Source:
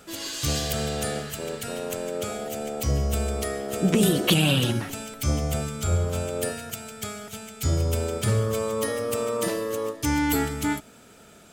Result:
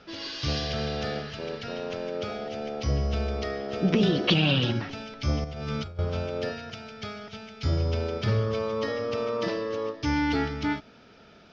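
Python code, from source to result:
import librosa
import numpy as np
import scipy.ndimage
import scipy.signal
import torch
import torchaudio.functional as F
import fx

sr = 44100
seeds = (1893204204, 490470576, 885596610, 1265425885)

y = scipy.signal.sosfilt(scipy.signal.ellip(4, 1.0, 40, 5400.0, 'lowpass', fs=sr, output='sos'), x)
y = fx.over_compress(y, sr, threshold_db=-34.0, ratio=-1.0, at=(5.44, 5.99))
y = y * 10.0 ** (-1.0 / 20.0)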